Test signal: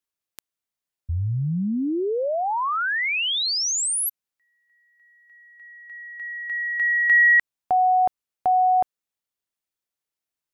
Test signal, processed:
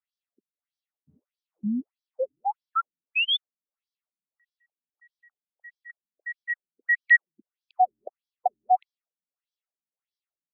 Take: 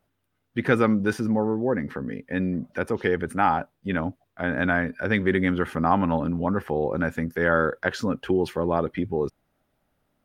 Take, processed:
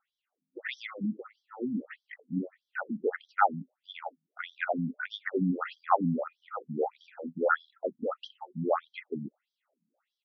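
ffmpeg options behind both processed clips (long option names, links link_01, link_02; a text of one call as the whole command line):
ffmpeg -i in.wav -af "aecho=1:1:1.5:0.38,afftfilt=real='re*between(b*sr/1024,200*pow(4400/200,0.5+0.5*sin(2*PI*1.6*pts/sr))/1.41,200*pow(4400/200,0.5+0.5*sin(2*PI*1.6*pts/sr))*1.41)':imag='im*between(b*sr/1024,200*pow(4400/200,0.5+0.5*sin(2*PI*1.6*pts/sr))/1.41,200*pow(4400/200,0.5+0.5*sin(2*PI*1.6*pts/sr))*1.41)':win_size=1024:overlap=0.75" out.wav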